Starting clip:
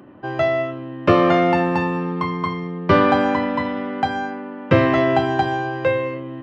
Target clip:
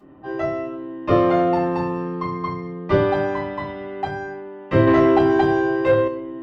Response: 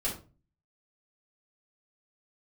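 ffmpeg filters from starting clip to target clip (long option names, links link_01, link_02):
-filter_complex "[1:a]atrim=start_sample=2205,asetrate=70560,aresample=44100[link_01];[0:a][link_01]afir=irnorm=-1:irlink=0,asettb=1/sr,asplit=3[link_02][link_03][link_04];[link_02]atrim=end=4.874[link_05];[link_03]atrim=start=4.87:end=6.08,asetpts=PTS-STARTPTS,afade=type=in:duration=0.004:curve=qsin,afade=type=out:start_time=1.206:duration=0.004:curve=qsin,acontrast=42[link_06];[link_04]atrim=start=6.076[link_07];[link_05][link_06]acrossfade=duration=0.004:curve1=hsin:curve2=qsin[link_08];[link_08][link_07]acrossfade=duration=0.004:curve1=qsin:curve2=hsin,volume=-6.5dB"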